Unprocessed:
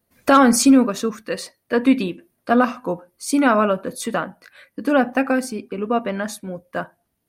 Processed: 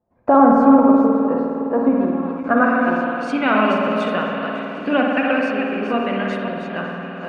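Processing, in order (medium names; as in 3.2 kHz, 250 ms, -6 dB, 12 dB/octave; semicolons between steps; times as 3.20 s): chunks repeated in reverse 270 ms, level -7 dB; shuffle delay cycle 919 ms, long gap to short 1.5:1, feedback 65%, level -18 dB; low-pass sweep 840 Hz -> 2.8 kHz, 2.14–2.97 s; spring tank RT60 2.6 s, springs 51 ms, chirp 40 ms, DRR -0.5 dB; endings held to a fixed fall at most 140 dB/s; trim -3.5 dB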